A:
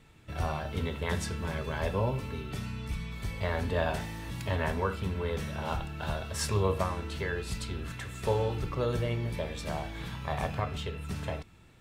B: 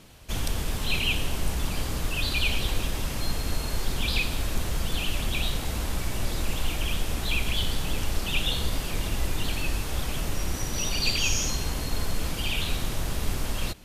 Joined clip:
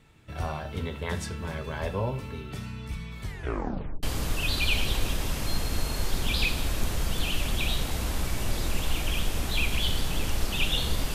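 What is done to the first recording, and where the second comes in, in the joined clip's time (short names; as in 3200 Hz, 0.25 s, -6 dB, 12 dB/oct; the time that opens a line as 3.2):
A
3.23 tape stop 0.80 s
4.03 switch to B from 1.77 s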